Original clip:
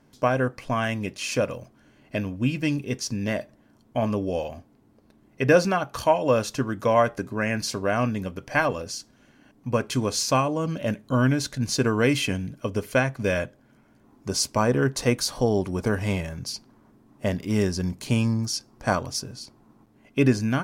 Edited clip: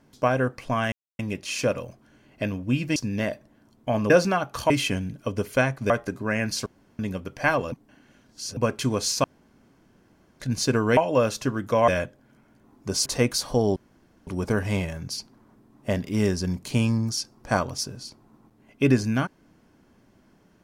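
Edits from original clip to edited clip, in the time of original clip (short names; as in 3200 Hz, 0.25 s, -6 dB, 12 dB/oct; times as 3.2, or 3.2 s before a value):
0.92 insert silence 0.27 s
2.69–3.04 cut
4.18–5.5 cut
6.1–7.01 swap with 12.08–13.28
7.77–8.1 room tone
8.83–9.68 reverse
10.35–11.51 room tone
14.46–14.93 cut
15.63 insert room tone 0.51 s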